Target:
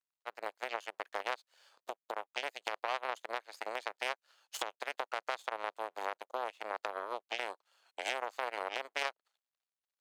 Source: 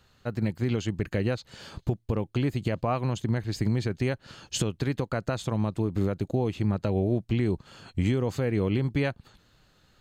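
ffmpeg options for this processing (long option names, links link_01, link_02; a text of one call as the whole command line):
ffmpeg -i in.wav -af "aeval=exprs='sgn(val(0))*max(abs(val(0))-0.00158,0)':channel_layout=same,aeval=exprs='0.178*(cos(1*acos(clip(val(0)/0.178,-1,1)))-cos(1*PI/2))+0.0708*(cos(3*acos(clip(val(0)/0.178,-1,1)))-cos(3*PI/2))+0.01*(cos(4*acos(clip(val(0)/0.178,-1,1)))-cos(4*PI/2))+0.0112*(cos(5*acos(clip(val(0)/0.178,-1,1)))-cos(5*PI/2))+0.001*(cos(8*acos(clip(val(0)/0.178,-1,1)))-cos(8*PI/2))':channel_layout=same,highpass=frequency=590:width=0.5412,highpass=frequency=590:width=1.3066,volume=1.5dB" out.wav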